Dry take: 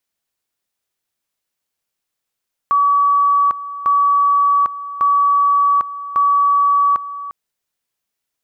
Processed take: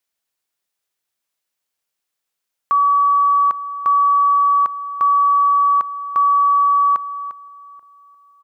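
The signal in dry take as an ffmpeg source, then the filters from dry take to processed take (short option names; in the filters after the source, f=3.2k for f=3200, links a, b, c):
-f lavfi -i "aevalsrc='pow(10,(-10.5-14.5*gte(mod(t,1.15),0.8))/20)*sin(2*PI*1140*t)':d=4.6:s=44100"
-filter_complex "[0:a]lowshelf=f=320:g=-7,asplit=2[a][b];[b]adelay=834,lowpass=f=1.1k:p=1,volume=-23dB,asplit=2[c][d];[d]adelay=834,lowpass=f=1.1k:p=1,volume=0.38,asplit=2[e][f];[f]adelay=834,lowpass=f=1.1k:p=1,volume=0.38[g];[a][c][e][g]amix=inputs=4:normalize=0"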